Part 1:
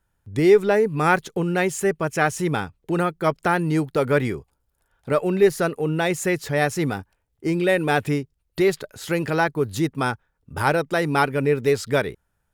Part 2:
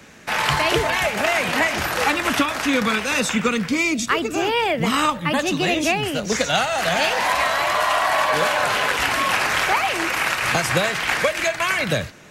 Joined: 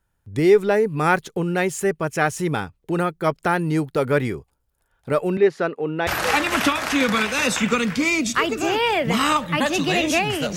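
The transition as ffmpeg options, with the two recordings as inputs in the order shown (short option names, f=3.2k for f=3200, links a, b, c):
-filter_complex "[0:a]asettb=1/sr,asplit=3[a][b][c];[a]atrim=end=5.374[d];[b]atrim=start=5.37:end=6.07,asetpts=PTS-STARTPTS,afade=t=in:d=0.004:c=qsin,afade=t=out:st=0.696:d=0.004:c=qsin,highpass=220,lowpass=3.3k[e];[c]atrim=start=6.066[f];[d][e]acrossfade=d=0.004:c1=hsin:c2=qsin[g];[g][f]acrossfade=d=0.004:c1=qsin:c2=hsin,apad=whole_dur=10.56,atrim=end=10.56,atrim=end=6.072[h];[1:a]atrim=start=1.798:end=6.29[i];[h][i]acrossfade=d=0.004:c1=hsin:c2=hsin"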